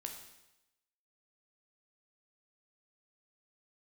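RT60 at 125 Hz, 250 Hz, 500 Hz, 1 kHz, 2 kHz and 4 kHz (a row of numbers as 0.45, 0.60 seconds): 0.85, 0.90, 0.95, 0.95, 0.90, 0.95 seconds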